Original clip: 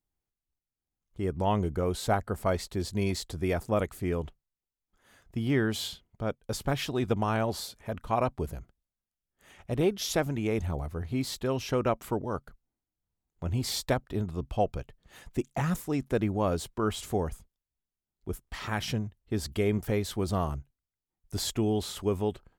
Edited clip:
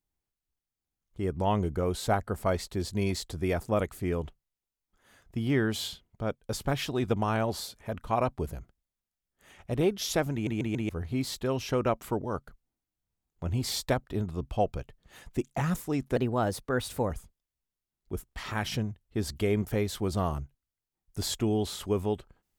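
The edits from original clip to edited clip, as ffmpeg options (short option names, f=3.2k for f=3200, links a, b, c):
-filter_complex "[0:a]asplit=7[a][b][c][d][e][f][g];[a]atrim=end=10.472[h];[b]atrim=start=10.328:end=10.472[i];[c]atrim=start=10.328:end=10.472[j];[d]atrim=start=10.328:end=10.472[k];[e]atrim=start=10.888:end=16.164[l];[f]atrim=start=16.16:end=17.26,asetpts=PTS-STARTPTS,asetrate=51597,aresample=44100[m];[g]atrim=start=17.256[n];[h][i]acrossfade=d=0.004:c1=hsin:c2=hsin[o];[o][j]acrossfade=d=0.004:c1=hsin:c2=hsin[p];[p][k]acrossfade=d=0.004:c1=hsin:c2=hsin[q];[q][l]acrossfade=d=0.004:c1=hsin:c2=hsin[r];[r][m]acrossfade=d=0.004:c1=hsin:c2=hsin[s];[s][n]acrossfade=d=0.004:c1=hsin:c2=hsin"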